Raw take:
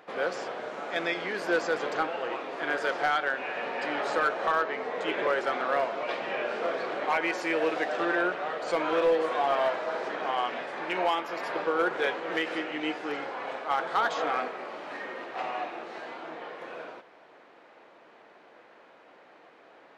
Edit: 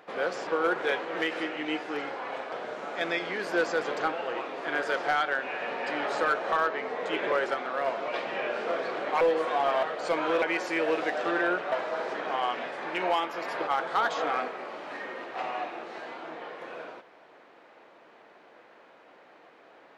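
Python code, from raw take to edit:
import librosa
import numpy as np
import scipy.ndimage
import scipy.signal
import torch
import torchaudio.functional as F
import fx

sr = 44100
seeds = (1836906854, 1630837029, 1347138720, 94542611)

y = fx.edit(x, sr, fx.clip_gain(start_s=5.49, length_s=0.32, db=-3.5),
    fx.swap(start_s=7.16, length_s=1.3, other_s=9.05, other_length_s=0.62),
    fx.move(start_s=11.62, length_s=2.05, to_s=0.47), tone=tone)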